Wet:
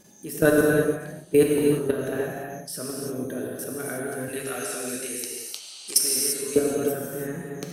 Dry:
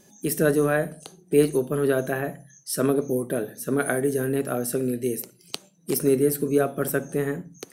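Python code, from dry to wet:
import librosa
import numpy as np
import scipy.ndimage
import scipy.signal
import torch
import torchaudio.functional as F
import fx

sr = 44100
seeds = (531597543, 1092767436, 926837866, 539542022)

y = fx.weighting(x, sr, curve='ITU-R 468', at=(4.28, 6.56))
y = fx.level_steps(y, sr, step_db=19)
y = y + 10.0 ** (-18.5 / 20.0) * np.pad(y, (int(142 * sr / 1000.0), 0))[:len(y)]
y = fx.rev_gated(y, sr, seeds[0], gate_ms=370, shape='flat', drr_db=-2.5)
y = y * librosa.db_to_amplitude(3.0)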